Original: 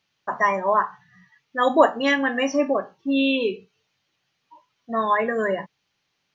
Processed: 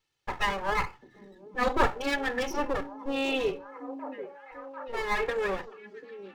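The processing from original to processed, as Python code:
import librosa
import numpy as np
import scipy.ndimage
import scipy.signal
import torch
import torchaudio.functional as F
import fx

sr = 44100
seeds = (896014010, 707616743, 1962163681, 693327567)

p1 = fx.lower_of_two(x, sr, delay_ms=2.3)
p2 = fx.low_shelf(p1, sr, hz=270.0, db=4.5)
p3 = p2 + fx.echo_stepped(p2, sr, ms=742, hz=280.0, octaves=0.7, feedback_pct=70, wet_db=-8.0, dry=0)
y = F.gain(torch.from_numpy(p3), -5.5).numpy()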